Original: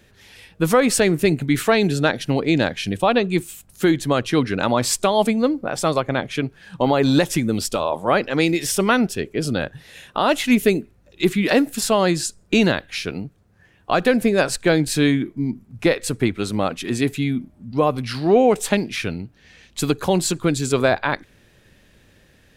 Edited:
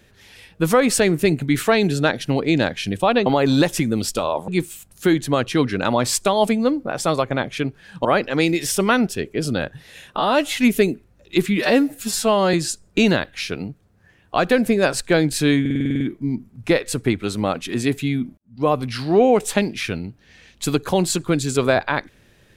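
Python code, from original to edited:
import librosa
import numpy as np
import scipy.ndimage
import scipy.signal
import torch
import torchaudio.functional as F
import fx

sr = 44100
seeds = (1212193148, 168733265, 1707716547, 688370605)

y = fx.edit(x, sr, fx.move(start_s=6.83, length_s=1.22, to_s=3.26),
    fx.stretch_span(start_s=10.17, length_s=0.26, factor=1.5),
    fx.stretch_span(start_s=11.46, length_s=0.63, factor=1.5),
    fx.stutter(start_s=15.16, slice_s=0.05, count=9),
    fx.fade_in_span(start_s=17.53, length_s=0.29, curve='qua'), tone=tone)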